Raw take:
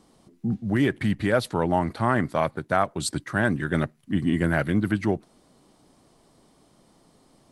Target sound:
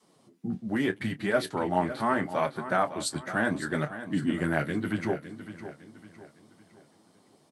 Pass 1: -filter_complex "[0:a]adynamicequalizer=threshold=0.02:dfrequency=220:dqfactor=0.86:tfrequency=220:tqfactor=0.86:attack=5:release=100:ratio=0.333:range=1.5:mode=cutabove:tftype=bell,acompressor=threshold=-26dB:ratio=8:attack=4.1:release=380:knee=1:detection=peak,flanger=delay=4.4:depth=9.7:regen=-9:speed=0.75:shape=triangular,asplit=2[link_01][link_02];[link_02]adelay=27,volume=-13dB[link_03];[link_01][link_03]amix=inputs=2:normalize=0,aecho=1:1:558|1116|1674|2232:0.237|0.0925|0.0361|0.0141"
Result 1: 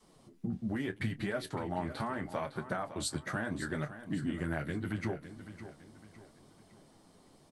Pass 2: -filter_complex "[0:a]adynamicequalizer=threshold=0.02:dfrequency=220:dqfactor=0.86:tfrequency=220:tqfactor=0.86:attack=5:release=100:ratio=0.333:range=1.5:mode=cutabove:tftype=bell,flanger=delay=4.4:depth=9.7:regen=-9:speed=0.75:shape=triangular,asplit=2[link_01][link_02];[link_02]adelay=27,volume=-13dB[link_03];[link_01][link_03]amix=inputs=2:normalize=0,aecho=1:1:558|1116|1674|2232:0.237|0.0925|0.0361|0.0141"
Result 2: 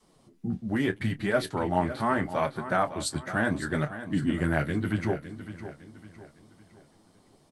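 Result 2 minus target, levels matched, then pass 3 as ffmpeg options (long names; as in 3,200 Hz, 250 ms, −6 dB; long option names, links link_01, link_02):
125 Hz band +3.5 dB
-filter_complex "[0:a]adynamicequalizer=threshold=0.02:dfrequency=220:dqfactor=0.86:tfrequency=220:tqfactor=0.86:attack=5:release=100:ratio=0.333:range=1.5:mode=cutabove:tftype=bell,highpass=150,flanger=delay=4.4:depth=9.7:regen=-9:speed=0.75:shape=triangular,asplit=2[link_01][link_02];[link_02]adelay=27,volume=-13dB[link_03];[link_01][link_03]amix=inputs=2:normalize=0,aecho=1:1:558|1116|1674|2232:0.237|0.0925|0.0361|0.0141"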